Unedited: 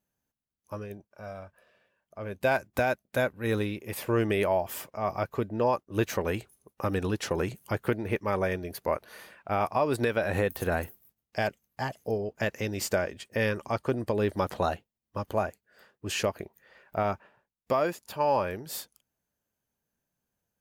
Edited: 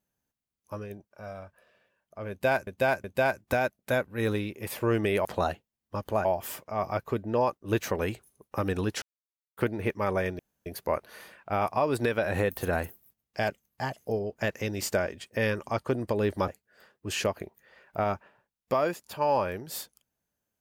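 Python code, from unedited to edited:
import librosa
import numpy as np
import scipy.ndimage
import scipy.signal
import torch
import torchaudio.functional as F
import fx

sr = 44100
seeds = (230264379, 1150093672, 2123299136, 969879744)

y = fx.edit(x, sr, fx.repeat(start_s=2.3, length_s=0.37, count=3),
    fx.silence(start_s=7.28, length_s=0.55),
    fx.insert_room_tone(at_s=8.65, length_s=0.27),
    fx.move(start_s=14.47, length_s=1.0, to_s=4.51), tone=tone)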